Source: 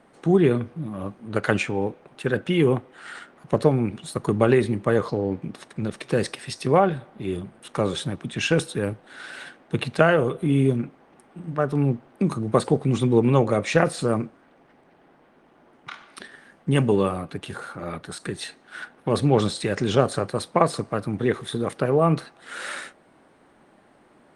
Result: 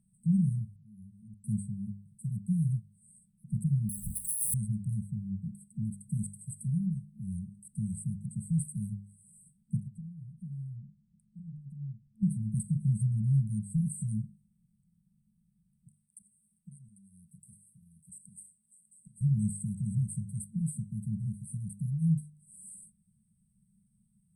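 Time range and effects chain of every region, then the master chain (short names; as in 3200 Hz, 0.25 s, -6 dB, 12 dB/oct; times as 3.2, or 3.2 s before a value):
0.68–1.44 compressor 2:1, threshold -43 dBFS + auto swell 0.349 s
3.89–4.54 inverted band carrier 3700 Hz + power-law curve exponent 0.5
9.81–12.23 LPF 1800 Hz 6 dB/oct + compressor 2:1, threshold -40 dBFS
15.91–19.21 tone controls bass -14 dB, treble +1 dB + compressor 12:1, threshold -37 dBFS + delay with a stepping band-pass 0.199 s, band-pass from 2100 Hz, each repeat 0.7 oct, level -2 dB
whole clip: FFT band-reject 220–7700 Hz; de-hum 50.27 Hz, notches 40; gain -3 dB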